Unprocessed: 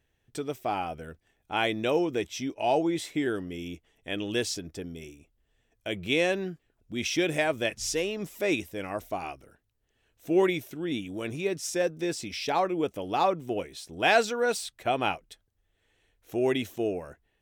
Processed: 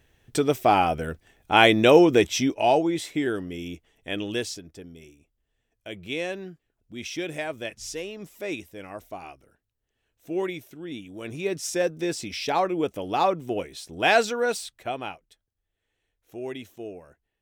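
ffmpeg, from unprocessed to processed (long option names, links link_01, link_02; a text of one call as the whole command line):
ffmpeg -i in.wav -af "volume=18.5dB,afade=type=out:start_time=2.31:duration=0.51:silence=0.375837,afade=type=out:start_time=4.19:duration=0.44:silence=0.421697,afade=type=in:start_time=11.13:duration=0.43:silence=0.421697,afade=type=out:start_time=14.34:duration=0.79:silence=0.281838" out.wav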